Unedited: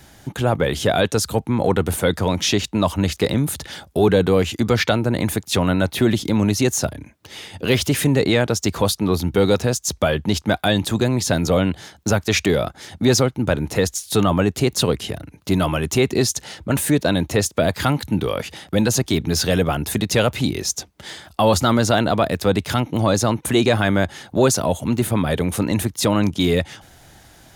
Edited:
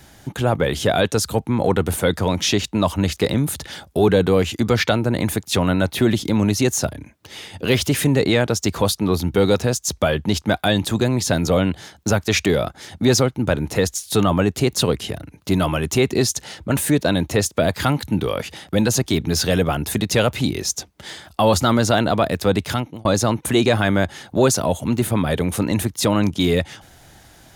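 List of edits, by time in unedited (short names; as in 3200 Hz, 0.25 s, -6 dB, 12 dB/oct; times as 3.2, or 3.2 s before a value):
22.68–23.05 fade out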